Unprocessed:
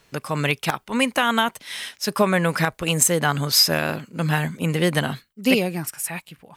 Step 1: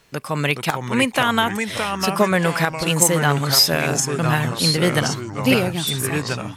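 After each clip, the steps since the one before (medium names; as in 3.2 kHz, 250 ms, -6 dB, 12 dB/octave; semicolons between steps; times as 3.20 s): ever faster or slower copies 394 ms, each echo -3 st, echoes 3, each echo -6 dB; trim +1.5 dB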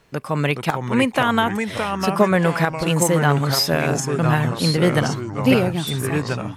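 treble shelf 2.1 kHz -9 dB; trim +2 dB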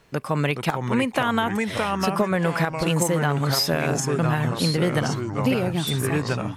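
compression 5:1, threshold -18 dBFS, peak gain reduction 8.5 dB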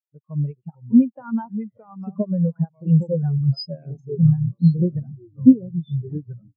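spectral contrast expander 4:1; trim +6.5 dB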